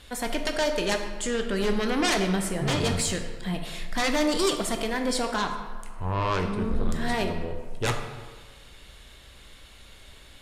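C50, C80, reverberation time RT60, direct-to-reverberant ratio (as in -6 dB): 6.5 dB, 8.0 dB, 1.5 s, 4.5 dB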